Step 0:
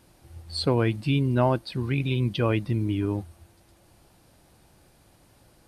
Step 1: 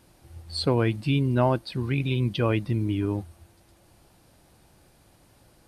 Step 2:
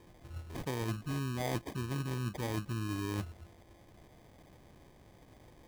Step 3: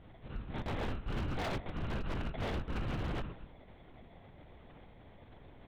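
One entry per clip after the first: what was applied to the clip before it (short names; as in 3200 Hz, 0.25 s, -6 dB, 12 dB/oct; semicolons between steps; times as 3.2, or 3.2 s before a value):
nothing audible
reverse; compressor 12:1, threshold -32 dBFS, peak gain reduction 15.5 dB; reverse; sample-and-hold 32×
speakerphone echo 0.14 s, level -14 dB; LPC vocoder at 8 kHz whisper; wavefolder -33.5 dBFS; gain +3 dB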